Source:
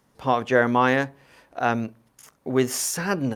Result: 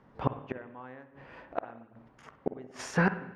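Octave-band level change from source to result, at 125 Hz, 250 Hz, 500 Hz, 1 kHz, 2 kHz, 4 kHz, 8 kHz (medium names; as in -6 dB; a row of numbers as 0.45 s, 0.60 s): -5.0 dB, -10.0 dB, -13.5 dB, -13.5 dB, -10.0 dB, -16.0 dB, -20.0 dB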